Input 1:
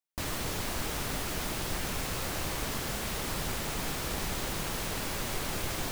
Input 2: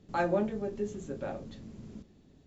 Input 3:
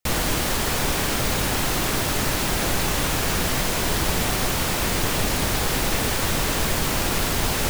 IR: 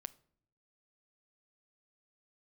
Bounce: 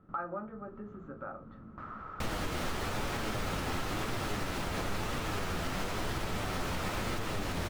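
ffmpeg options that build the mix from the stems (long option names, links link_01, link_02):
-filter_complex "[0:a]adelay=1600,volume=-13dB[link_01];[1:a]bandreject=frequency=410:width=12,volume=-3.5dB[link_02];[2:a]lowpass=frequency=2700:poles=1,flanger=delay=8.3:depth=3.6:regen=56:speed=1:shape=triangular,adelay=2150,volume=-3dB[link_03];[link_01][link_02]amix=inputs=2:normalize=0,lowpass=frequency=1300:width_type=q:width=15,acompressor=threshold=-43dB:ratio=2,volume=0dB[link_04];[link_03][link_04]amix=inputs=2:normalize=0,alimiter=level_in=0.5dB:limit=-24dB:level=0:latency=1:release=172,volume=-0.5dB"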